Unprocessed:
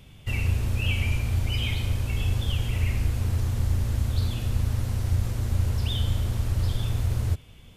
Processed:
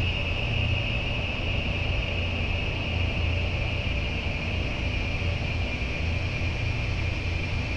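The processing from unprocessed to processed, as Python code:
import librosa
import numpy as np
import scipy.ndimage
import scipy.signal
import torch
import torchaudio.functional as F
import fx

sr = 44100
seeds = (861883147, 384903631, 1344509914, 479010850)

p1 = fx.high_shelf(x, sr, hz=5700.0, db=-4.5)
p2 = fx.over_compress(p1, sr, threshold_db=-28.0, ratio=-1.0)
p3 = p1 + (p2 * librosa.db_to_amplitude(-1.0))
p4 = fx.add_hum(p3, sr, base_hz=50, snr_db=13)
p5 = 10.0 ** (-26.0 / 20.0) * np.tanh(p4 / 10.0 ** (-26.0 / 20.0))
p6 = fx.filter_lfo_lowpass(p5, sr, shape='sine', hz=1.7, low_hz=570.0, high_hz=5700.0, q=7.2)
y = fx.paulstretch(p6, sr, seeds[0], factor=27.0, window_s=1.0, from_s=0.97)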